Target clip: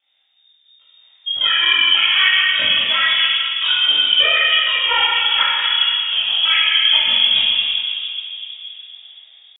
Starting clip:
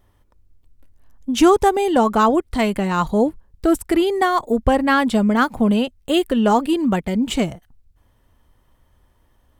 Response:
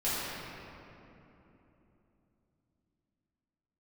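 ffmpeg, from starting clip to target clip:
-filter_complex "[0:a]highpass=frequency=93:poles=1,acrossover=split=1100[link_01][link_02];[link_01]alimiter=limit=-16dB:level=0:latency=1:release=362[link_03];[link_03][link_02]amix=inputs=2:normalize=0,dynaudnorm=framelen=130:gausssize=5:maxgain=10dB,tremolo=f=23:d=0.947,asetrate=74167,aresample=44100,atempo=0.594604[link_04];[1:a]atrim=start_sample=2205[link_05];[link_04][link_05]afir=irnorm=-1:irlink=0,lowpass=frequency=3100:width_type=q:width=0.5098,lowpass=frequency=3100:width_type=q:width=0.6013,lowpass=frequency=3100:width_type=q:width=0.9,lowpass=frequency=3100:width_type=q:width=2.563,afreqshift=-3700,volume=-6dB"

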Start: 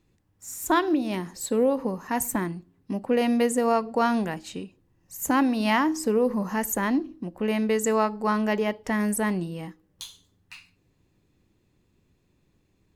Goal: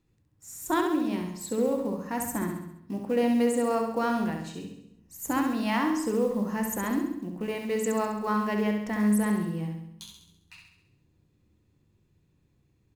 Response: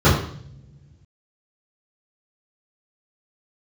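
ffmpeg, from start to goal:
-filter_complex "[0:a]acrusher=bits=7:mode=log:mix=0:aa=0.000001,aecho=1:1:67|134|201|268|335|402|469:0.531|0.287|0.155|0.0836|0.0451|0.0244|0.0132,asplit=2[link_01][link_02];[1:a]atrim=start_sample=2205[link_03];[link_02][link_03]afir=irnorm=-1:irlink=0,volume=-34dB[link_04];[link_01][link_04]amix=inputs=2:normalize=0,volume=-6.5dB"

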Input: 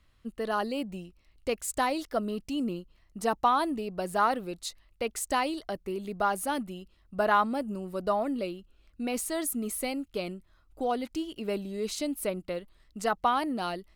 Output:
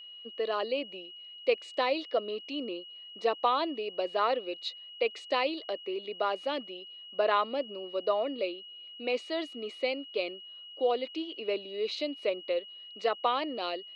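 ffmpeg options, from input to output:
ffmpeg -i in.wav -af "highpass=frequency=330:width=0.5412,highpass=frequency=330:width=1.3066,equalizer=frequency=510:width_type=q:width=4:gain=6,equalizer=frequency=850:width_type=q:width=4:gain=-7,equalizer=frequency=1500:width_type=q:width=4:gain=-8,equalizer=frequency=2500:width_type=q:width=4:gain=6,equalizer=frequency=4000:width_type=q:width=4:gain=6,lowpass=frequency=4200:width=0.5412,lowpass=frequency=4200:width=1.3066,aeval=exprs='val(0)+0.00562*sin(2*PI*2900*n/s)':channel_layout=same" out.wav

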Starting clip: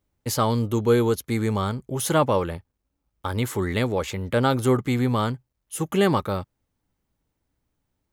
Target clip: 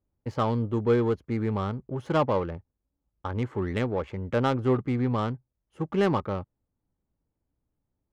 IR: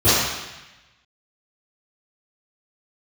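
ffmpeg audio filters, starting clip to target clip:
-af "bandreject=frequency=3700:width=13,adynamicsmooth=sensitivity=1:basefreq=1200,volume=-3.5dB"

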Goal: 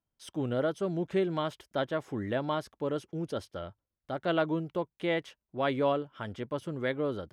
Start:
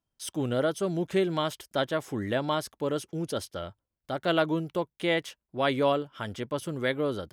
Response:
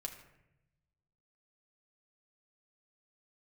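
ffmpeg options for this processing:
-af "lowpass=frequency=2300:poles=1,volume=-2.5dB"

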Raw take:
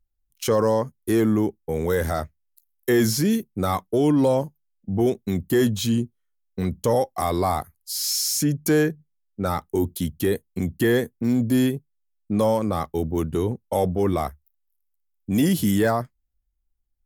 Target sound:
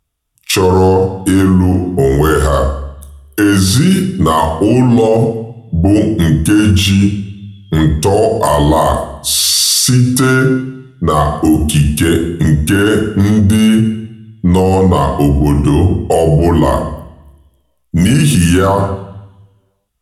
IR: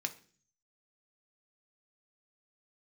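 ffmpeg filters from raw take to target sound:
-filter_complex "[0:a]asetrate=37573,aresample=44100[link_01];[1:a]atrim=start_sample=2205,asetrate=22932,aresample=44100[link_02];[link_01][link_02]afir=irnorm=-1:irlink=0,alimiter=level_in=14.5dB:limit=-1dB:release=50:level=0:latency=1,volume=-1dB"

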